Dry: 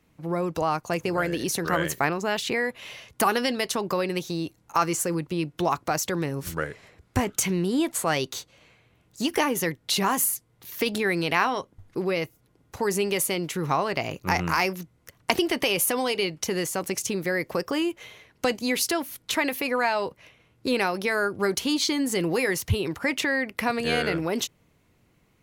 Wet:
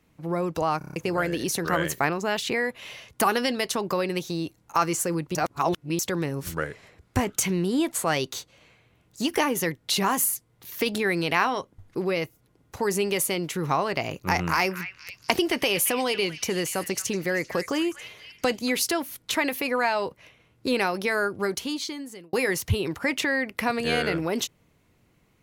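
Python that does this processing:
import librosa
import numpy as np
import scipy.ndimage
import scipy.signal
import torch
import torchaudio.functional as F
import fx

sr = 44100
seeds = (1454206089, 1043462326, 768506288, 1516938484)

y = fx.echo_stepped(x, sr, ms=235, hz=2000.0, octaves=0.7, feedback_pct=70, wet_db=-8.5, at=(14.16, 18.7))
y = fx.edit(y, sr, fx.stutter_over(start_s=0.78, slice_s=0.03, count=6),
    fx.reverse_span(start_s=5.35, length_s=0.64),
    fx.fade_out_span(start_s=21.19, length_s=1.14), tone=tone)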